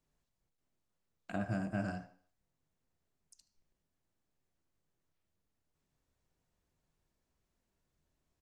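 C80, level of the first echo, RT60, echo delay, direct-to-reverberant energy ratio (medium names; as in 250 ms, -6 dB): 17.0 dB, -17.0 dB, 0.55 s, 76 ms, 8.5 dB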